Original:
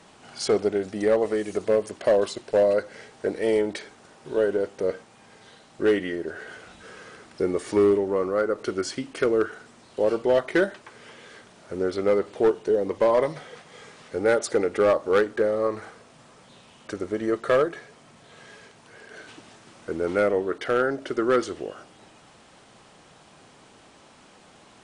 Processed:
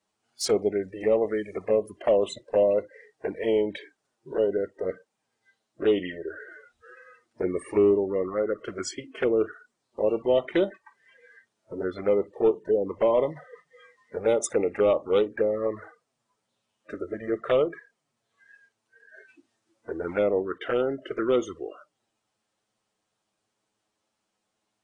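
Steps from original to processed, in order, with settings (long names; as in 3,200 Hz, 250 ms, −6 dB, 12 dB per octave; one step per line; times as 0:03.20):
flanger swept by the level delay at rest 10.4 ms, full sweep at −18.5 dBFS
noise reduction from a noise print of the clip's start 25 dB
bass and treble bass −2 dB, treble +6 dB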